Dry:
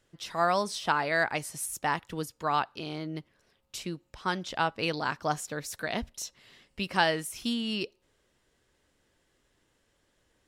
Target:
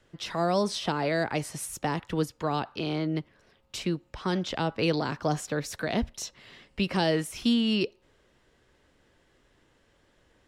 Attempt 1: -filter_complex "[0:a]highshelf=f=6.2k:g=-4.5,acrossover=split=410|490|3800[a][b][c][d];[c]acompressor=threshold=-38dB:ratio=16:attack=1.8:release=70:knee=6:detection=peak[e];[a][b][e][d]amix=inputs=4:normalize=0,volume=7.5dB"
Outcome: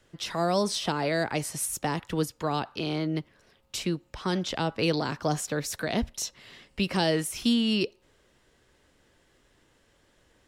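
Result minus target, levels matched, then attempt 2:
8000 Hz band +4.5 dB
-filter_complex "[0:a]highshelf=f=6.2k:g=-13,acrossover=split=410|490|3800[a][b][c][d];[c]acompressor=threshold=-38dB:ratio=16:attack=1.8:release=70:knee=6:detection=peak[e];[a][b][e][d]amix=inputs=4:normalize=0,volume=7.5dB"

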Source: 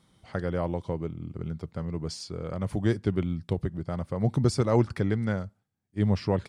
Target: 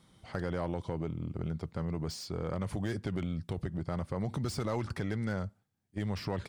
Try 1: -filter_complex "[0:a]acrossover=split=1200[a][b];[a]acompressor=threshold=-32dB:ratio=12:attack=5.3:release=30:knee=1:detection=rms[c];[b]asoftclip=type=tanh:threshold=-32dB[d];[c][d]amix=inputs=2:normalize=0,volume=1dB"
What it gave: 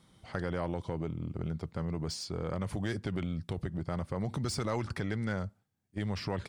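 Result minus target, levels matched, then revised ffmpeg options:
soft clip: distortion -8 dB
-filter_complex "[0:a]acrossover=split=1200[a][b];[a]acompressor=threshold=-32dB:ratio=12:attack=5.3:release=30:knee=1:detection=rms[c];[b]asoftclip=type=tanh:threshold=-40dB[d];[c][d]amix=inputs=2:normalize=0,volume=1dB"

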